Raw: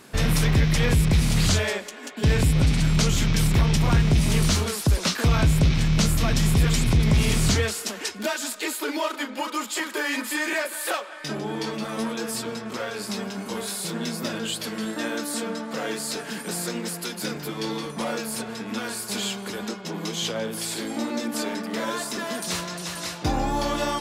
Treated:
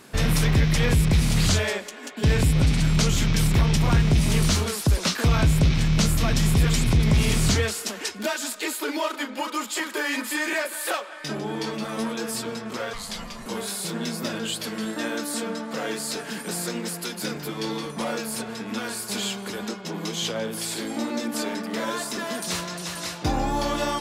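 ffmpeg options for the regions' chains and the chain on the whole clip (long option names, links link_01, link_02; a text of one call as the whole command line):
ffmpeg -i in.wav -filter_complex "[0:a]asettb=1/sr,asplit=3[link_01][link_02][link_03];[link_01]atrim=end=12.934[link_04];[link_02]atrim=start=12.93:end=13.46,asetpts=PTS-STARTPTS,afade=type=in:duration=0.004:curve=qsin,afade=type=out:start_time=0.526:duration=0.004:curve=qsin,highpass=350,bandreject=frequency=740:width=5.2,afreqshift=-420[link_05];[link_03]atrim=start=13.456[link_06];[link_04][link_05]acrossfade=duration=0.004:curve1=hsin:curve2=qsin[link_07];[link_07][link_06]acrossfade=duration=0.004:curve1=qsin:curve2=hsin" out.wav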